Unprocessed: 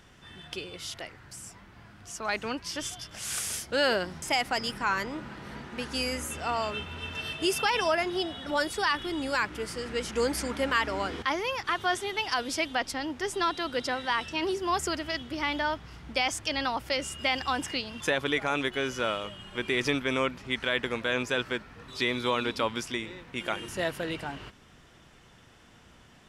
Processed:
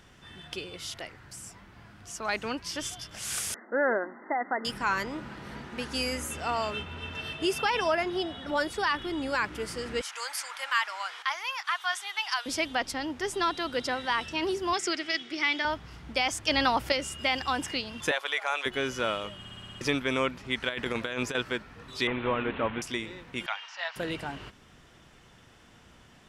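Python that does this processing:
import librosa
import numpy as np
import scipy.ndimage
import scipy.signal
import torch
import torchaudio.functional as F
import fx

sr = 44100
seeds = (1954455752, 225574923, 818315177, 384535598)

y = fx.brickwall_bandpass(x, sr, low_hz=200.0, high_hz=2100.0, at=(3.54, 4.65))
y = fx.high_shelf(y, sr, hz=4600.0, db=-7.0, at=(6.82, 9.44))
y = fx.highpass(y, sr, hz=890.0, slope=24, at=(10.01, 12.46))
y = fx.cabinet(y, sr, low_hz=340.0, low_slope=12, high_hz=9000.0, hz=(350.0, 540.0, 970.0, 2200.0, 3600.0, 5400.0), db=(6, -9, -8, 8, 4, 6), at=(14.73, 15.65))
y = fx.highpass(y, sr, hz=590.0, slope=24, at=(18.11, 18.66))
y = fx.over_compress(y, sr, threshold_db=-31.0, ratio=-0.5, at=(20.69, 21.35))
y = fx.delta_mod(y, sr, bps=16000, step_db=-32.0, at=(22.07, 22.82))
y = fx.ellip_bandpass(y, sr, low_hz=790.0, high_hz=5400.0, order=3, stop_db=40, at=(23.46, 23.96))
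y = fx.edit(y, sr, fx.clip_gain(start_s=16.48, length_s=0.44, db=5.0),
    fx.stutter_over(start_s=19.39, slice_s=0.06, count=7), tone=tone)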